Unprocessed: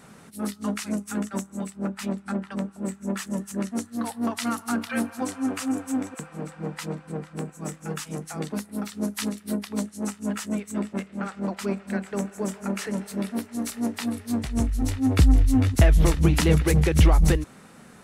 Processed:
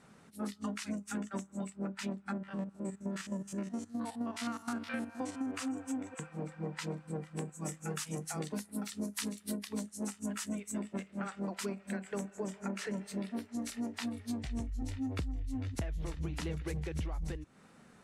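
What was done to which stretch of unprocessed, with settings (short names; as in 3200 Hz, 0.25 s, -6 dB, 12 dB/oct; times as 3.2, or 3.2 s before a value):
2.33–5.55 stepped spectrum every 50 ms
6.89–12.25 high shelf 7600 Hz +11.5 dB
whole clip: Bessel low-pass 8200 Hz, order 2; spectral noise reduction 7 dB; compressor 16:1, threshold -30 dBFS; gain -3.5 dB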